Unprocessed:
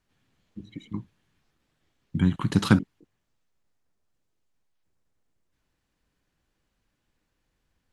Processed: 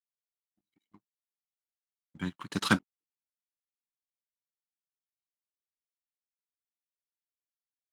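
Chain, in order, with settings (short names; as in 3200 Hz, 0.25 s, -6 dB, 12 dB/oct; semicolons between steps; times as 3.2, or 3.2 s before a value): HPF 790 Hz 6 dB/oct; sample leveller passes 2; upward expander 2.5:1, over -42 dBFS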